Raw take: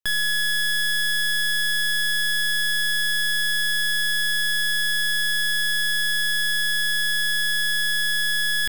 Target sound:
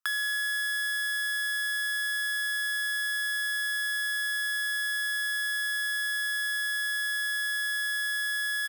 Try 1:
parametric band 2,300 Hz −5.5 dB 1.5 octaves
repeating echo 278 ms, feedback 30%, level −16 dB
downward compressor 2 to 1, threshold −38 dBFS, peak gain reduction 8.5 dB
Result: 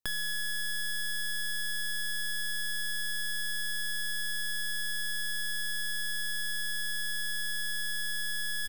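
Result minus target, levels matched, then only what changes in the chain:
1,000 Hz band −5.5 dB
add after downward compressor: high-pass with resonance 1,300 Hz, resonance Q 5.4

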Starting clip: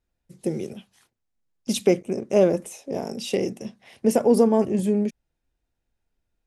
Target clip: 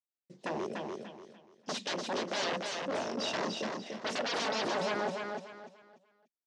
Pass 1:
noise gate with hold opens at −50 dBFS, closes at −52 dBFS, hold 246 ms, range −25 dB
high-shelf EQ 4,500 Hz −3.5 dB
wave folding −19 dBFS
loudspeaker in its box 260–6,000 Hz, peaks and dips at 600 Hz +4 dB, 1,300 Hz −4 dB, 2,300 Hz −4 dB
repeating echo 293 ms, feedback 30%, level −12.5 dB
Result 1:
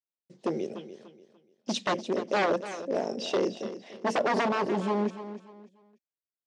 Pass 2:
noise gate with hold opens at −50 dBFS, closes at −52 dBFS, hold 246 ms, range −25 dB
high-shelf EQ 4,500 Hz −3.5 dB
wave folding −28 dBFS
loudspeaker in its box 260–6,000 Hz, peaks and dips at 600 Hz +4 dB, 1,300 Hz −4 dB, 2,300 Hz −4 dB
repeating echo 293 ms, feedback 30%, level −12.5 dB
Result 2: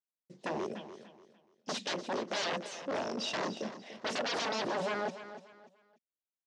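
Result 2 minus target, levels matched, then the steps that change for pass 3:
echo-to-direct −8.5 dB
change: repeating echo 293 ms, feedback 30%, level −4 dB

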